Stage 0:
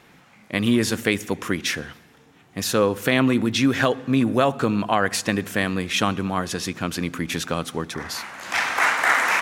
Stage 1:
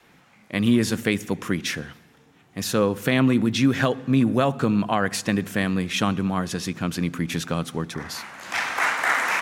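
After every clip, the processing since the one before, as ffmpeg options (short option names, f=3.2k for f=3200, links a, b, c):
-af "adynamicequalizer=threshold=0.0178:dfrequency=160:dqfactor=1.1:tfrequency=160:tqfactor=1.1:attack=5:release=100:ratio=0.375:range=3.5:mode=boostabove:tftype=bell,volume=-3dB"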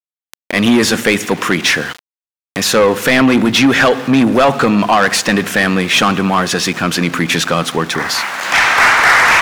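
-filter_complex "[0:a]aeval=exprs='val(0)*gte(abs(val(0)),0.00708)':c=same,asplit=2[a][b];[b]highpass=f=720:p=1,volume=22dB,asoftclip=type=tanh:threshold=-5.5dB[c];[a][c]amix=inputs=2:normalize=0,lowpass=f=4.6k:p=1,volume=-6dB,acompressor=mode=upward:threshold=-22dB:ratio=2.5,volume=4.5dB"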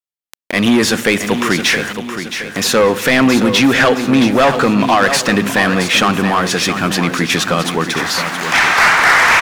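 -af "aecho=1:1:670|1340|2010|2680|3350:0.355|0.16|0.0718|0.0323|0.0145,volume=-1dB"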